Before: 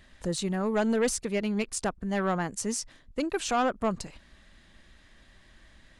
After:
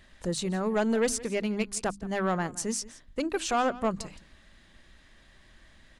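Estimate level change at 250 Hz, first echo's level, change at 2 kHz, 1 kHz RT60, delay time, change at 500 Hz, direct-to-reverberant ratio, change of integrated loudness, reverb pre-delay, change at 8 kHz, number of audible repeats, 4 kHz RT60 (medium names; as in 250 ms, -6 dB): -1.0 dB, -19.0 dB, 0.0 dB, no reverb, 169 ms, 0.0 dB, no reverb, 0.0 dB, no reverb, 0.0 dB, 1, no reverb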